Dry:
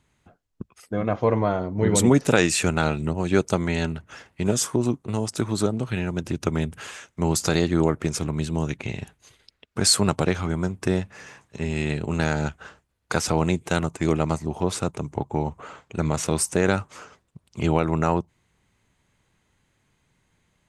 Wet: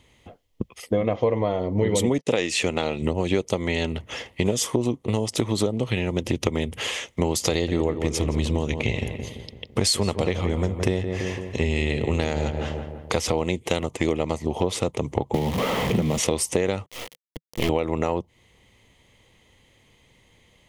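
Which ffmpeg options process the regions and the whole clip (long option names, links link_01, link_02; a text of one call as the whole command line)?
ffmpeg -i in.wav -filter_complex "[0:a]asettb=1/sr,asplit=3[link_01][link_02][link_03];[link_01]atrim=end=2.184[link_04];[link_02]atrim=start=2.18:end=3.02,asetpts=PTS-STARTPTS,afade=type=in:duration=0.004:curve=qsin,afade=type=out:start_time=0.836:duration=0.004:curve=qsin,lowpass=8300,agate=range=-47dB:threshold=-35dB:ratio=16:release=100:detection=peak,lowshelf=frequency=79:gain=-11[link_05];[link_03]atrim=start=3.016[link_06];[link_04][link_05]acrossfade=duration=0.004:curve1=hsin:curve2=qsin[link_07];[link_07][link_06]acrossfade=duration=0.004:curve1=qsin:curve2=hsin,asettb=1/sr,asplit=3[link_08][link_09][link_10];[link_08]atrim=end=7.514[link_11];[link_09]atrim=start=7.51:end=13.31,asetpts=PTS-STARTPTS,afade=type=in:duration=0.004:curve=qsin,afade=type=out:start_time=5.796:duration=0.004:curve=qsin,equalizer=frequency=64:width_type=o:width=1:gain=7.5,asplit=2[link_12][link_13];[link_13]adelay=168,lowpass=frequency=1900:poles=1,volume=-10dB,asplit=2[link_14][link_15];[link_15]adelay=168,lowpass=frequency=1900:poles=1,volume=0.52,asplit=2[link_16][link_17];[link_17]adelay=168,lowpass=frequency=1900:poles=1,volume=0.52,asplit=2[link_18][link_19];[link_19]adelay=168,lowpass=frequency=1900:poles=1,volume=0.52,asplit=2[link_20][link_21];[link_21]adelay=168,lowpass=frequency=1900:poles=1,volume=0.52,asplit=2[link_22][link_23];[link_23]adelay=168,lowpass=frequency=1900:poles=1,volume=0.52[link_24];[link_12][link_14][link_16][link_18][link_20][link_22][link_24]amix=inputs=7:normalize=0,atrim=end_sample=255780[link_25];[link_10]atrim=start=13.306[link_26];[link_11][link_25]acrossfade=duration=0.004:curve1=hsin:curve2=qsin[link_27];[link_27][link_26]acrossfade=duration=0.004:curve1=qsin:curve2=hsin,asettb=1/sr,asplit=3[link_28][link_29][link_30];[link_28]atrim=end=15.344[link_31];[link_29]atrim=start=15.34:end=16.18,asetpts=PTS-STARTPTS,afade=type=in:duration=0.004:curve=qsin,afade=type=out:start_time=0.836:duration=0.004:curve=qsin,aeval=exprs='val(0)+0.5*0.0473*sgn(val(0))':channel_layout=same,acrossover=split=92|2300[link_32][link_33][link_34];[link_32]acompressor=threshold=-42dB:ratio=4[link_35];[link_33]acompressor=threshold=-27dB:ratio=4[link_36];[link_34]acompressor=threshold=-43dB:ratio=4[link_37];[link_35][link_36][link_37]amix=inputs=3:normalize=0,equalizer=frequency=190:width_type=o:width=0.71:gain=13.5[link_38];[link_30]atrim=start=16.176[link_39];[link_31][link_38]acrossfade=duration=0.004:curve1=hsin:curve2=qsin[link_40];[link_40][link_39]acrossfade=duration=0.004:curve1=qsin:curve2=hsin,asettb=1/sr,asplit=3[link_41][link_42][link_43];[link_41]atrim=end=16.864[link_44];[link_42]atrim=start=16.86:end=17.69,asetpts=PTS-STARTPTS,afade=type=in:duration=0.004:curve=qsin,afade=type=out:start_time=0.826:duration=0.004:curve=qsin,acrusher=bits=4:dc=4:mix=0:aa=0.000001,volume=19dB,asoftclip=hard,volume=-19dB[link_45];[link_43]atrim=start=17.686[link_46];[link_44][link_45]acrossfade=duration=0.004:curve1=hsin:curve2=qsin[link_47];[link_47][link_46]acrossfade=duration=0.004:curve1=qsin:curve2=hsin,equalizer=frequency=160:width_type=o:width=0.33:gain=-7,equalizer=frequency=500:width_type=o:width=0.33:gain=7,equalizer=frequency=2000:width_type=o:width=0.33:gain=7,equalizer=frequency=3150:width_type=o:width=0.33:gain=8,equalizer=frequency=8000:width_type=o:width=0.33:gain=-4,acompressor=threshold=-28dB:ratio=6,equalizer=frequency=1500:width_type=o:width=0.42:gain=-13,volume=9dB" out.wav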